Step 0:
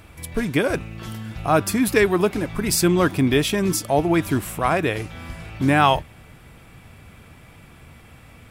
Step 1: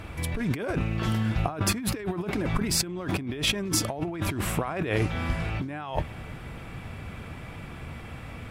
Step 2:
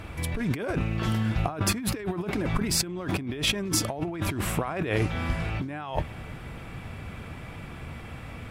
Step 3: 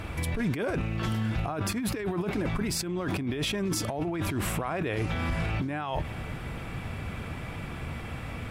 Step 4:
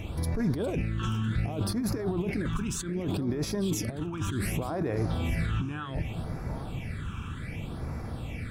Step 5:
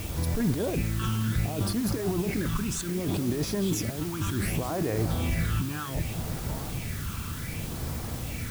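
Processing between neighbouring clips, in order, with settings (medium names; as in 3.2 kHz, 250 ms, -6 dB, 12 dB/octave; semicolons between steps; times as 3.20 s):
low-pass 3.3 kHz 6 dB/octave; compressor with a negative ratio -29 dBFS, ratio -1
hard clipper -12.5 dBFS, distortion -41 dB
peak limiter -24 dBFS, peak gain reduction 11.5 dB; trim +3 dB
backward echo that repeats 446 ms, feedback 40%, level -12 dB; phase shifter stages 8, 0.66 Hz, lowest notch 590–3000 Hz
added noise white -44 dBFS; trim +1.5 dB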